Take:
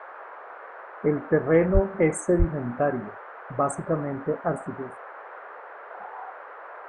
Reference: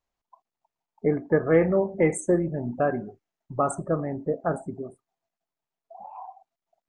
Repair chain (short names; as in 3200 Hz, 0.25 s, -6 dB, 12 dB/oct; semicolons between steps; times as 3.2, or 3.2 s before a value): de-plosive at 1.73/2.38; noise print and reduce 30 dB